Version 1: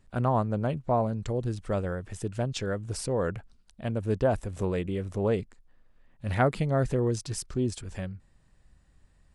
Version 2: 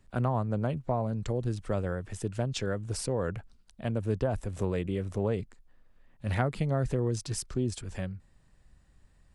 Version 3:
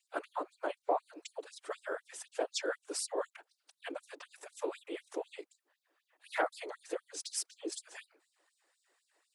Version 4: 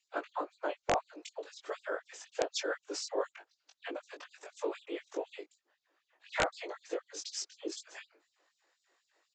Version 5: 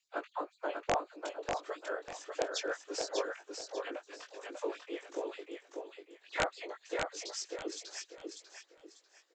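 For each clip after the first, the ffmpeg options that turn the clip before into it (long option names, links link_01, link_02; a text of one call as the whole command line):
ffmpeg -i in.wav -filter_complex "[0:a]acrossover=split=140[link_01][link_02];[link_02]acompressor=threshold=-27dB:ratio=4[link_03];[link_01][link_03]amix=inputs=2:normalize=0" out.wav
ffmpeg -i in.wav -af "afftfilt=real='hypot(re,im)*cos(2*PI*random(0))':imag='hypot(re,im)*sin(2*PI*random(1))':win_size=512:overlap=0.75,afftfilt=real='re*gte(b*sr/1024,280*pow(3800/280,0.5+0.5*sin(2*PI*4*pts/sr)))':imag='im*gte(b*sr/1024,280*pow(3800/280,0.5+0.5*sin(2*PI*4*pts/sr)))':win_size=1024:overlap=0.75,volume=6dB" out.wav
ffmpeg -i in.wav -filter_complex "[0:a]asplit=2[link_01][link_02];[link_02]adelay=20,volume=-4dB[link_03];[link_01][link_03]amix=inputs=2:normalize=0,aresample=16000,aeval=exprs='(mod(9.44*val(0)+1,2)-1)/9.44':channel_layout=same,aresample=44100" out.wav
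ffmpeg -i in.wav -af "aecho=1:1:594|1188|1782|2376:0.596|0.173|0.0501|0.0145,volume=-1.5dB" out.wav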